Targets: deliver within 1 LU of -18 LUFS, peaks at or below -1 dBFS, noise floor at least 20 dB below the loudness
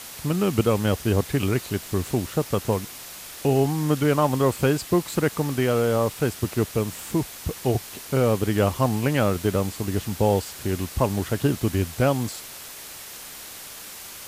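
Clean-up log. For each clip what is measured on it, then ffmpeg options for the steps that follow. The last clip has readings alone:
noise floor -40 dBFS; noise floor target -44 dBFS; loudness -24.0 LUFS; peak -7.5 dBFS; loudness target -18.0 LUFS
-> -af "afftdn=nr=6:nf=-40"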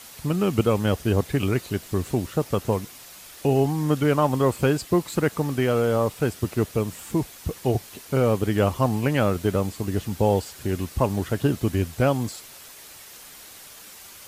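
noise floor -45 dBFS; loudness -24.0 LUFS; peak -8.0 dBFS; loudness target -18.0 LUFS
-> -af "volume=6dB"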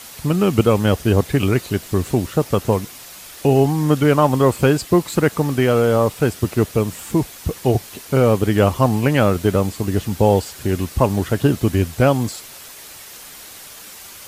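loudness -18.0 LUFS; peak -2.0 dBFS; noise floor -39 dBFS

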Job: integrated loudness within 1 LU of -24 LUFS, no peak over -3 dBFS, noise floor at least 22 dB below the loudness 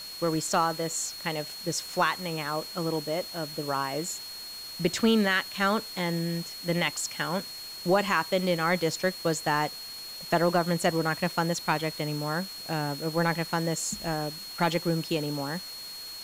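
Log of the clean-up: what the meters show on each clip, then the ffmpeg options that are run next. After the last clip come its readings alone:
steady tone 4300 Hz; tone level -39 dBFS; noise floor -41 dBFS; noise floor target -51 dBFS; loudness -28.5 LUFS; peak -11.0 dBFS; loudness target -24.0 LUFS
-> -af "bandreject=f=4.3k:w=30"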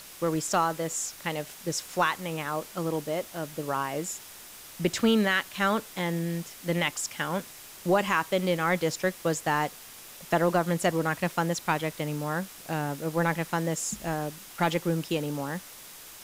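steady tone none; noise floor -47 dBFS; noise floor target -51 dBFS
-> -af "afftdn=nr=6:nf=-47"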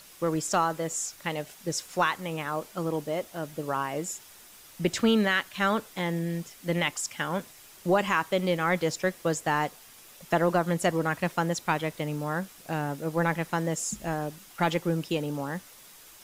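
noise floor -52 dBFS; loudness -29.0 LUFS; peak -11.5 dBFS; loudness target -24.0 LUFS
-> -af "volume=5dB"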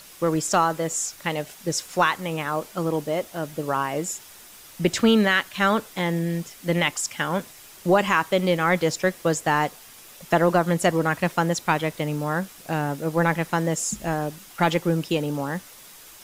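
loudness -24.0 LUFS; peak -6.5 dBFS; noise floor -47 dBFS

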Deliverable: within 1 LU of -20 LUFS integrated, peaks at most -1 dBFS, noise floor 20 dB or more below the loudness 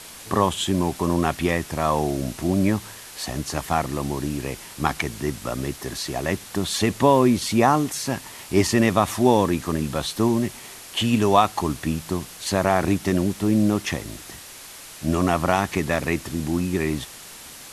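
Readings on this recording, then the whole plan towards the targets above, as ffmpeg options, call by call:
noise floor -41 dBFS; noise floor target -43 dBFS; loudness -23.0 LUFS; peak -2.5 dBFS; loudness target -20.0 LUFS
-> -af "afftdn=nr=6:nf=-41"
-af "volume=3dB,alimiter=limit=-1dB:level=0:latency=1"

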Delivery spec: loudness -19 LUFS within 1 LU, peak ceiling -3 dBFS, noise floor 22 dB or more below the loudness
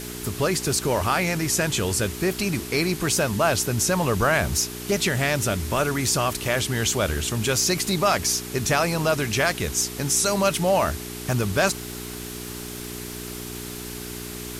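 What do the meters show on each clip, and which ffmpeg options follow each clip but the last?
hum 60 Hz; harmonics up to 420 Hz; hum level -34 dBFS; noise floor -35 dBFS; noise floor target -45 dBFS; loudness -23.0 LUFS; peak -7.5 dBFS; loudness target -19.0 LUFS
-> -af "bandreject=f=60:t=h:w=4,bandreject=f=120:t=h:w=4,bandreject=f=180:t=h:w=4,bandreject=f=240:t=h:w=4,bandreject=f=300:t=h:w=4,bandreject=f=360:t=h:w=4,bandreject=f=420:t=h:w=4"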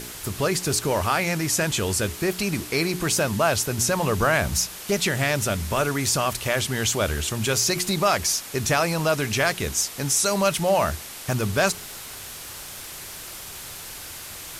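hum none; noise floor -38 dBFS; noise floor target -45 dBFS
-> -af "afftdn=nr=7:nf=-38"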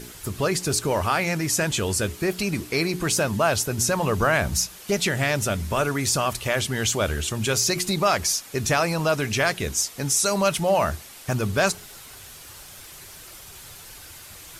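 noise floor -44 dBFS; noise floor target -45 dBFS
-> -af "afftdn=nr=6:nf=-44"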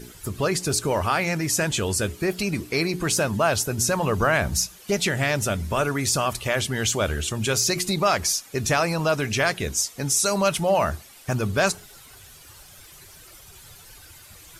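noise floor -48 dBFS; loudness -23.0 LUFS; peak -8.5 dBFS; loudness target -19.0 LUFS
-> -af "volume=4dB"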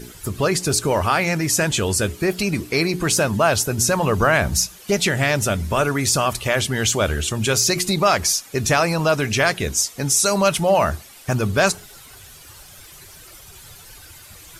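loudness -19.0 LUFS; peak -4.5 dBFS; noise floor -44 dBFS

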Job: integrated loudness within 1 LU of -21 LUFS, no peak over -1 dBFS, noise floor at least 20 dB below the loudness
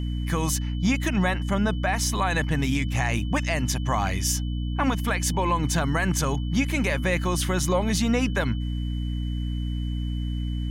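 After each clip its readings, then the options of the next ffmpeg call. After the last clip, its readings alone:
hum 60 Hz; harmonics up to 300 Hz; hum level -25 dBFS; steady tone 3000 Hz; tone level -45 dBFS; loudness -25.5 LUFS; peak -11.0 dBFS; loudness target -21.0 LUFS
-> -af "bandreject=f=60:t=h:w=6,bandreject=f=120:t=h:w=6,bandreject=f=180:t=h:w=6,bandreject=f=240:t=h:w=6,bandreject=f=300:t=h:w=6"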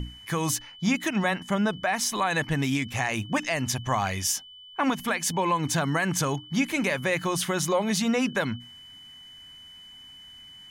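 hum none; steady tone 3000 Hz; tone level -45 dBFS
-> -af "bandreject=f=3k:w=30"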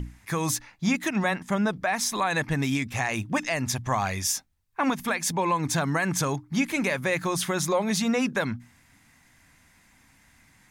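steady tone none; loudness -26.5 LUFS; peak -12.5 dBFS; loudness target -21.0 LUFS
-> -af "volume=5.5dB"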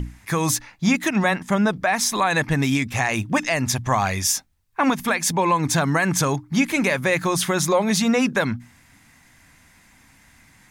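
loudness -21.0 LUFS; peak -7.0 dBFS; noise floor -55 dBFS

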